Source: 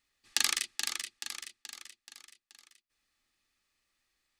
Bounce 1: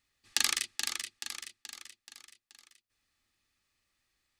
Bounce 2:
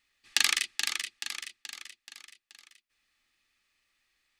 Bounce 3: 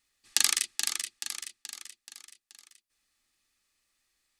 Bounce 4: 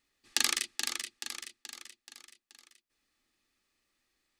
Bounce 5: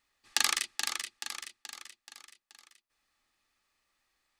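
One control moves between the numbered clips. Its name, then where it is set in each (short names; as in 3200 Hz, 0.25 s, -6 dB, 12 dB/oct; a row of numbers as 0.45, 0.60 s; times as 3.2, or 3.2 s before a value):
bell, frequency: 97, 2400, 9600, 310, 890 Hz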